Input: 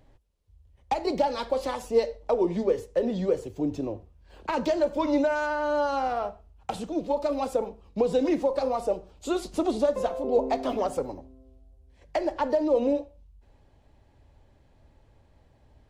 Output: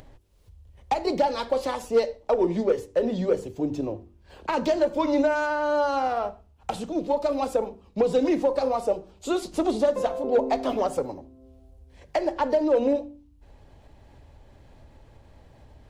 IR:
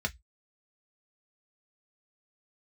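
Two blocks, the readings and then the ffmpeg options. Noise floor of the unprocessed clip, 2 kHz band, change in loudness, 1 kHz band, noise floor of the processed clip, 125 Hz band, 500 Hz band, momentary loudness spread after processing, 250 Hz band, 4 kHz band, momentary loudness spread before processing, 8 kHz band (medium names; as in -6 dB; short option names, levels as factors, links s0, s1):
-61 dBFS, +2.5 dB, +2.0 dB, +2.0 dB, -56 dBFS, +1.5 dB, +2.0 dB, 9 LU, +1.5 dB, +2.0 dB, 9 LU, +2.0 dB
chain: -af "bandreject=f=48.57:t=h:w=4,bandreject=f=97.14:t=h:w=4,bandreject=f=145.71:t=h:w=4,bandreject=f=194.28:t=h:w=4,bandreject=f=242.85:t=h:w=4,bandreject=f=291.42:t=h:w=4,bandreject=f=339.99:t=h:w=4,bandreject=f=388.56:t=h:w=4,acompressor=mode=upward:threshold=0.00631:ratio=2.5,aeval=exprs='0.266*(cos(1*acos(clip(val(0)/0.266,-1,1)))-cos(1*PI/2))+0.0266*(cos(5*acos(clip(val(0)/0.266,-1,1)))-cos(5*PI/2))+0.015*(cos(7*acos(clip(val(0)/0.266,-1,1)))-cos(7*PI/2))':c=same,volume=1.12"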